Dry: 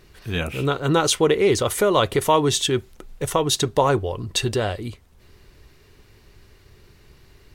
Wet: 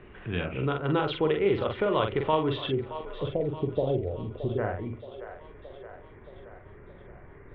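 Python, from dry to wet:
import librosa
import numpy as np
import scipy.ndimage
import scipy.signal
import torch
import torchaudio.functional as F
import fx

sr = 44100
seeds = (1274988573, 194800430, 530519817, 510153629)

y = fx.wiener(x, sr, points=9)
y = fx.steep_lowpass(y, sr, hz=fx.steps((0.0, 3400.0), (2.69, 680.0), (4.57, 2200.0)), slope=48)
y = fx.doubler(y, sr, ms=45.0, db=-5)
y = fx.echo_split(y, sr, split_hz=440.0, low_ms=85, high_ms=622, feedback_pct=52, wet_db=-16.0)
y = fx.band_squash(y, sr, depth_pct=40)
y = F.gain(torch.from_numpy(y), -7.5).numpy()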